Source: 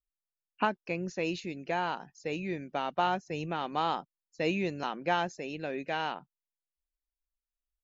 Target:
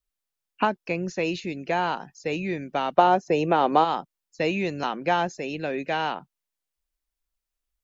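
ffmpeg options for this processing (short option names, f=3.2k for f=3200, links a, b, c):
-filter_complex "[0:a]asplit=3[a][b][c];[a]afade=t=out:st=2.97:d=0.02[d];[b]equalizer=f=430:w=0.41:g=12.5,afade=t=in:st=2.97:d=0.02,afade=t=out:st=3.83:d=0.02[e];[c]afade=t=in:st=3.83:d=0.02[f];[d][e][f]amix=inputs=3:normalize=0,acrossover=split=540|1200|3200[g][h][i][j];[g]acompressor=threshold=-32dB:ratio=4[k];[h]acompressor=threshold=-24dB:ratio=4[l];[i]acompressor=threshold=-38dB:ratio=4[m];[j]acompressor=threshold=-46dB:ratio=4[n];[k][l][m][n]amix=inputs=4:normalize=0,volume=7dB"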